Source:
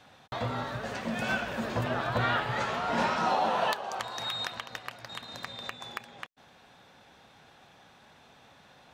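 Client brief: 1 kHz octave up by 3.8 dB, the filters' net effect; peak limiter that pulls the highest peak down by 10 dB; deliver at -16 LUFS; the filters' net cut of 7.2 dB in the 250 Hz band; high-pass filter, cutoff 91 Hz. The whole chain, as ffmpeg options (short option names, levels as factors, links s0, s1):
-af "highpass=91,equalizer=f=250:t=o:g=-9,equalizer=f=1000:t=o:g=5.5,volume=7.5,alimiter=limit=0.531:level=0:latency=1"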